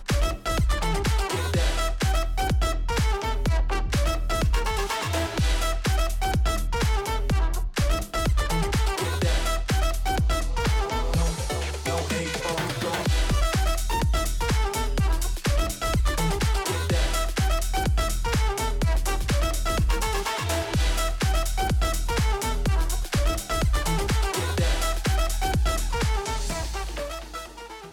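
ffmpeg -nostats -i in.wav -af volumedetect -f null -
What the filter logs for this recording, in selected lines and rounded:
mean_volume: -23.7 dB
max_volume: -15.3 dB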